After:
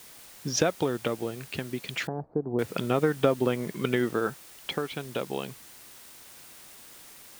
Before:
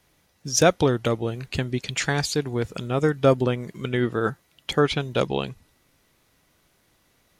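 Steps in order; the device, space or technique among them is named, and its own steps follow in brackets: medium wave at night (BPF 170–3500 Hz; compressor, threshold -25 dBFS, peak gain reduction 13 dB; tremolo 0.3 Hz, depth 61%; whine 9000 Hz -65 dBFS; white noise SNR 19 dB); 2.07–2.59 inverse Chebyshev low-pass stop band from 2900 Hz, stop band 60 dB; gain +5.5 dB

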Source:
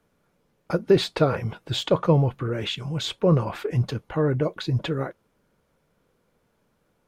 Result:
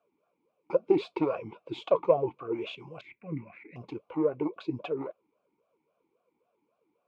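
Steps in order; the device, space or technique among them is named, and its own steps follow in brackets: 3.01–3.76 EQ curve 230 Hz 0 dB, 450 Hz -22 dB, 1200 Hz -19 dB, 2000 Hz +12 dB, 3300 Hz -22 dB; talk box (tube stage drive 12 dB, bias 0.6; vowel sweep a-u 3.7 Hz); gain +7.5 dB

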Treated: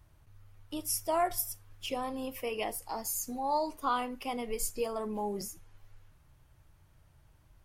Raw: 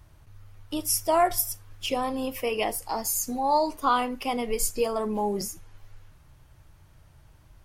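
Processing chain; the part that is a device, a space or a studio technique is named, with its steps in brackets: exciter from parts (in parallel at -13.5 dB: HPF 4100 Hz 12 dB/oct + soft clip -28.5 dBFS, distortion -8 dB + HPF 4800 Hz); on the sum: gain -7.5 dB

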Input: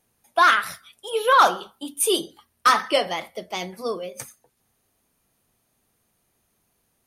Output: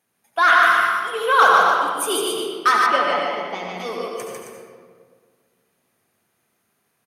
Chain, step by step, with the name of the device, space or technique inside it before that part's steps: stadium PA (HPF 130 Hz 12 dB/oct; bell 1700 Hz +6 dB 1.4 oct; loudspeakers at several distances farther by 51 m -3 dB, 92 m -8 dB; reverb RT60 1.8 s, pre-delay 66 ms, DRR 0 dB); 2.86–3.8 LPF 2600 Hz 6 dB/oct; gain -4.5 dB

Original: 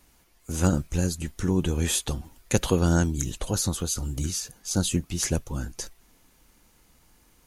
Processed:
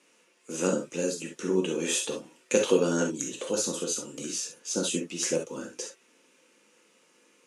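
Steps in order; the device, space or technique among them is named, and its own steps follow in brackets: dynamic EQ 2000 Hz, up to -4 dB, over -46 dBFS, Q 1; television speaker (speaker cabinet 230–8900 Hz, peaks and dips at 490 Hz +9 dB, 750 Hz -10 dB, 2600 Hz +7 dB, 4300 Hz -4 dB); non-linear reverb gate 90 ms flat, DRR 1 dB; gain -2 dB

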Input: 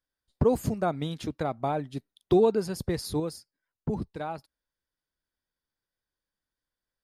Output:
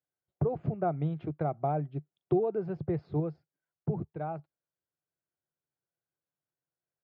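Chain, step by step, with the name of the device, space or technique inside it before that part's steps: bass amplifier (compressor 5:1, threshold -23 dBFS, peak gain reduction 6.5 dB; speaker cabinet 86–2100 Hz, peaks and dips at 150 Hz +10 dB, 240 Hz -9 dB, 360 Hz +5 dB, 700 Hz +6 dB, 1000 Hz -5 dB, 1800 Hz -8 dB); gain -4 dB

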